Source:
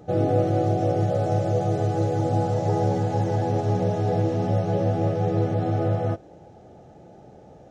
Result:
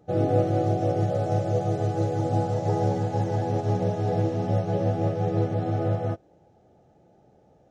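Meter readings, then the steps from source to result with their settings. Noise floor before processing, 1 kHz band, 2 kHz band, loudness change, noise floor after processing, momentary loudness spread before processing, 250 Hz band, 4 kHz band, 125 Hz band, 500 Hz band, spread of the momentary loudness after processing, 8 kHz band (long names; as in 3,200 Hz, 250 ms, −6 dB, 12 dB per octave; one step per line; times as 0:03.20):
−48 dBFS, −2.0 dB, −2.5 dB, −2.0 dB, −59 dBFS, 2 LU, −2.0 dB, −2.0 dB, −2.0 dB, −2.0 dB, 3 LU, can't be measured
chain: expander for the loud parts 1.5 to 1, over −40 dBFS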